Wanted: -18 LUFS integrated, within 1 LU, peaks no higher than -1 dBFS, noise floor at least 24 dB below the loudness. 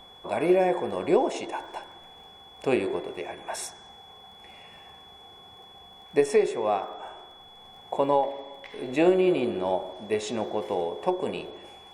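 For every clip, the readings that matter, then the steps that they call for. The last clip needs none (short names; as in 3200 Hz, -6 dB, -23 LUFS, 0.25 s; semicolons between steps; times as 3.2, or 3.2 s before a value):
ticks 22/s; steady tone 3400 Hz; tone level -49 dBFS; loudness -27.0 LUFS; peak -8.0 dBFS; loudness target -18.0 LUFS
-> de-click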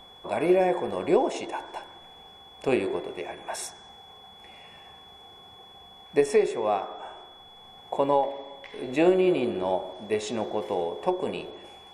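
ticks 0/s; steady tone 3400 Hz; tone level -49 dBFS
-> notch 3400 Hz, Q 30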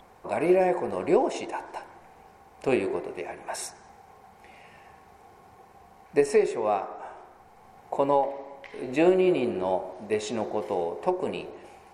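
steady tone none; loudness -27.0 LUFS; peak -8.0 dBFS; loudness target -18.0 LUFS
-> gain +9 dB; limiter -1 dBFS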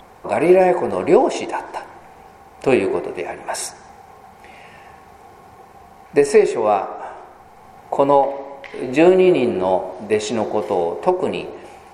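loudness -18.0 LUFS; peak -1.0 dBFS; noise floor -45 dBFS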